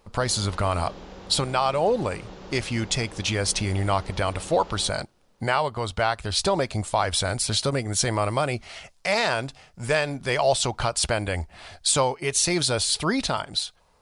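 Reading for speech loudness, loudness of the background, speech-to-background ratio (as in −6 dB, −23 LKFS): −24.5 LKFS, −43.0 LKFS, 18.5 dB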